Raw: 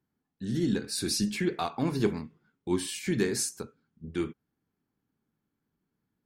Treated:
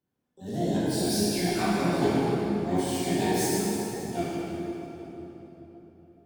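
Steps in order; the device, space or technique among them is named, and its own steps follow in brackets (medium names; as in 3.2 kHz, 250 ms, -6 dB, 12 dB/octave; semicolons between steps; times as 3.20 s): shimmer-style reverb (harmony voices +12 st -5 dB; reverberation RT60 4.0 s, pre-delay 8 ms, DRR -8.5 dB); trim -7 dB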